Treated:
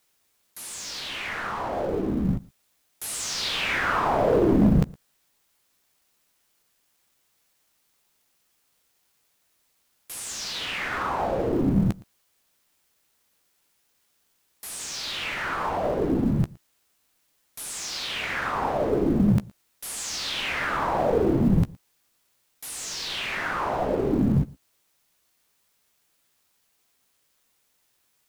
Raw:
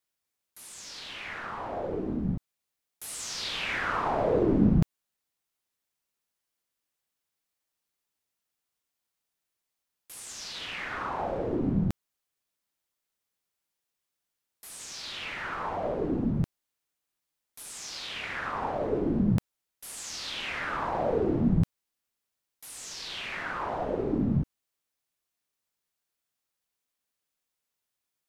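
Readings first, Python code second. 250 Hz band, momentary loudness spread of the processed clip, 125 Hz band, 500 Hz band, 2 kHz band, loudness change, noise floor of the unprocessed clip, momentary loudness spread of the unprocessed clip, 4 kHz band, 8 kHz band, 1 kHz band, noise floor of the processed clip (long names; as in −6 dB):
+4.5 dB, 13 LU, +4.0 dB, +5.0 dB, +6.0 dB, +4.5 dB, −85 dBFS, 16 LU, +6.5 dB, +7.0 dB, +5.5 dB, −70 dBFS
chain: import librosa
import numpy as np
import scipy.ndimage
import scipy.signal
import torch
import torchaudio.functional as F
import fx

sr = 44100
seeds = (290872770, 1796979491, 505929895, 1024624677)

p1 = fx.law_mismatch(x, sr, coded='mu')
p2 = fx.doubler(p1, sr, ms=15.0, db=-12.5)
p3 = np.clip(p2, -10.0 ** (-17.5 / 20.0), 10.0 ** (-17.5 / 20.0))
p4 = p3 + fx.echo_single(p3, sr, ms=115, db=-23.5, dry=0)
y = p4 * librosa.db_to_amplitude(4.0)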